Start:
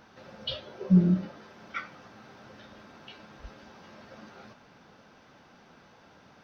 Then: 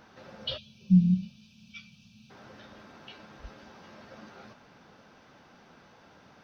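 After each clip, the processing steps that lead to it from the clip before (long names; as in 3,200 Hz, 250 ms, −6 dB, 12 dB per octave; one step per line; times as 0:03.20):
gain on a spectral selection 0:00.58–0:02.30, 240–2,300 Hz −28 dB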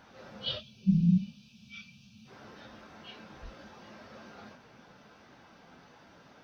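random phases in long frames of 100 ms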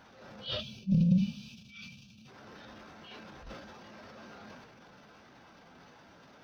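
transient designer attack −10 dB, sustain +9 dB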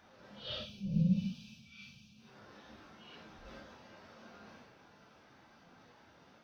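random phases in long frames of 200 ms
level −5 dB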